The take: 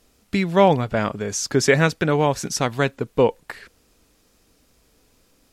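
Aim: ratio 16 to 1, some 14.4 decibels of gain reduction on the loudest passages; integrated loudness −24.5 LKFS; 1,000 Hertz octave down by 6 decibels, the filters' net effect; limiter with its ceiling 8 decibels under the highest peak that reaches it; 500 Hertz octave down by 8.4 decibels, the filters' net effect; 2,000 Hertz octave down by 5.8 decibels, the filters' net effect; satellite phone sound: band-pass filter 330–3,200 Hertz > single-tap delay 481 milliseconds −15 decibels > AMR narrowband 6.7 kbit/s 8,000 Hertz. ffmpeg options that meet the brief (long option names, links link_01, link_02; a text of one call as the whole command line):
ffmpeg -i in.wav -af "equalizer=frequency=500:width_type=o:gain=-8,equalizer=frequency=1000:width_type=o:gain=-3.5,equalizer=frequency=2000:width_type=o:gain=-5,acompressor=threshold=-30dB:ratio=16,alimiter=level_in=4.5dB:limit=-24dB:level=0:latency=1,volume=-4.5dB,highpass=330,lowpass=3200,aecho=1:1:481:0.178,volume=21dB" -ar 8000 -c:a libopencore_amrnb -b:a 6700 out.amr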